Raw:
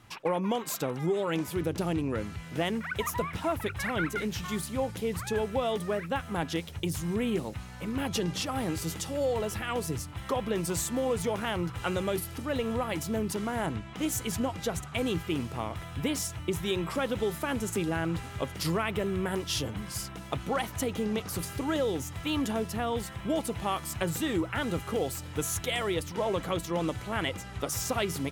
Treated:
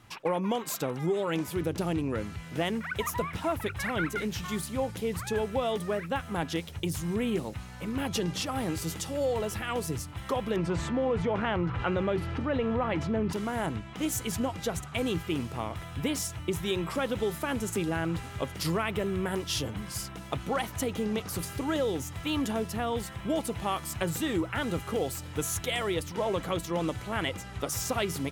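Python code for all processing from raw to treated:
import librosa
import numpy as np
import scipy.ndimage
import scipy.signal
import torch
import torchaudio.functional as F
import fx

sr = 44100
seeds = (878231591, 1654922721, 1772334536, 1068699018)

y = fx.chain(x, sr, fx.lowpass(hz=2400.0, slope=12),
    fx.env_flatten(amount_pct=50), at=(10.56, 13.33))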